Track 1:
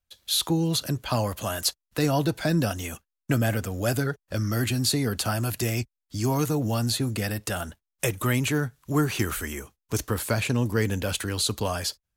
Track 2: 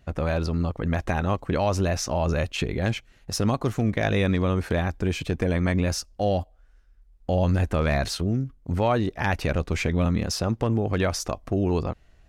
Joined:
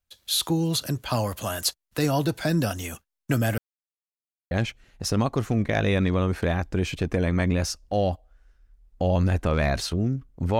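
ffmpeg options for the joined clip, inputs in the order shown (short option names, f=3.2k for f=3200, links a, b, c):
-filter_complex "[0:a]apad=whole_dur=10.59,atrim=end=10.59,asplit=2[a][b];[a]atrim=end=3.58,asetpts=PTS-STARTPTS,afade=t=out:st=3.576:d=0.004:c=hsin[c];[b]atrim=start=3.58:end=4.51,asetpts=PTS-STARTPTS,volume=0[d];[1:a]atrim=start=2.79:end=8.87,asetpts=PTS-STARTPTS,afade=t=in:d=0.004:c=hsin[e];[c][d][e]concat=n=3:v=0:a=1"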